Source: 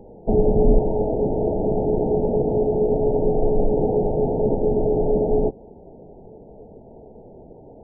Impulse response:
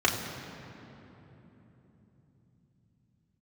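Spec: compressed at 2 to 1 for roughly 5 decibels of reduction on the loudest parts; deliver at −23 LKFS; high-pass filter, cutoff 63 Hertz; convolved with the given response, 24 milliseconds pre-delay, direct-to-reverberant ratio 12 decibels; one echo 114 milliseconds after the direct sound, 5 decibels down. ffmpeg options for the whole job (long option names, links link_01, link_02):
-filter_complex "[0:a]highpass=63,acompressor=threshold=-24dB:ratio=2,aecho=1:1:114:0.562,asplit=2[link_01][link_02];[1:a]atrim=start_sample=2205,adelay=24[link_03];[link_02][link_03]afir=irnorm=-1:irlink=0,volume=-26dB[link_04];[link_01][link_04]amix=inputs=2:normalize=0,volume=2.5dB"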